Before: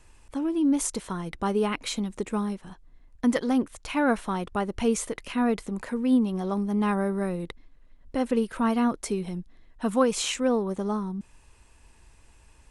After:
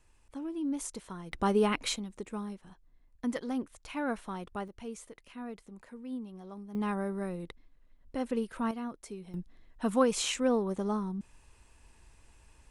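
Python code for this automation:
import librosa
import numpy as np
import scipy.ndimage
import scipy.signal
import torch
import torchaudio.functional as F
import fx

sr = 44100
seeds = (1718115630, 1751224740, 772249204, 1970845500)

y = fx.gain(x, sr, db=fx.steps((0.0, -10.5), (1.32, -1.0), (1.96, -10.0), (4.68, -17.5), (6.75, -7.5), (8.71, -14.5), (9.34, -3.5)))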